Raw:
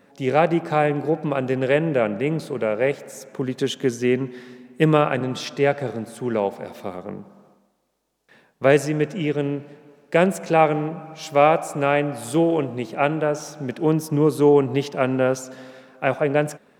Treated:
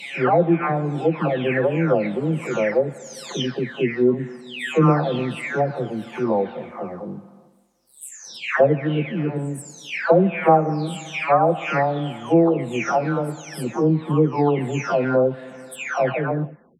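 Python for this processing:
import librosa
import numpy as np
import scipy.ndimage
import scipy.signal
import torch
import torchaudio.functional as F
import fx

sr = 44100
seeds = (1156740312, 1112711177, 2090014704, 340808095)

y = fx.spec_delay(x, sr, highs='early', ms=762)
y = fx.env_lowpass_down(y, sr, base_hz=1500.0, full_db=-17.0)
y = y * 10.0 ** (3.5 / 20.0)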